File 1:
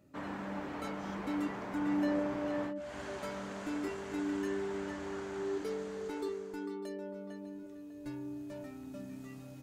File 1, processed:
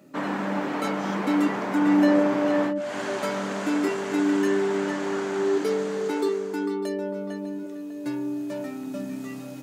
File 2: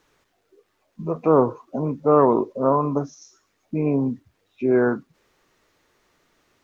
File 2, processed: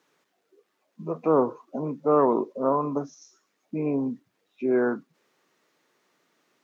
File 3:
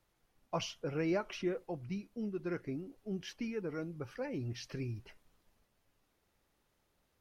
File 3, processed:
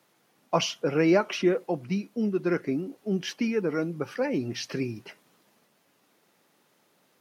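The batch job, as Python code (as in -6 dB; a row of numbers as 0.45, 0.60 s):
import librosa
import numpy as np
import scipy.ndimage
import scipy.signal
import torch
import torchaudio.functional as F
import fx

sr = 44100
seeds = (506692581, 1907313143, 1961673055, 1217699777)

y = scipy.signal.sosfilt(scipy.signal.butter(4, 160.0, 'highpass', fs=sr, output='sos'), x)
y = librosa.util.normalize(y) * 10.0 ** (-9 / 20.0)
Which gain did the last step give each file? +13.0, -4.5, +12.0 dB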